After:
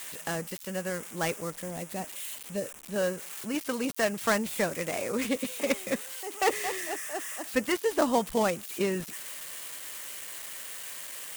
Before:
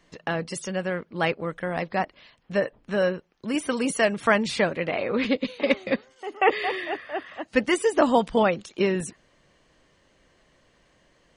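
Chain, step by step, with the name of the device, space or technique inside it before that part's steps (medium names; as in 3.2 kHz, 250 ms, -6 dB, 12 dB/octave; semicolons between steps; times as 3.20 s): 1.50–2.96 s: peaking EQ 1.4 kHz -14.5 dB 1.7 oct; budget class-D amplifier (dead-time distortion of 0.11 ms; zero-crossing glitches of -19 dBFS); trim -5.5 dB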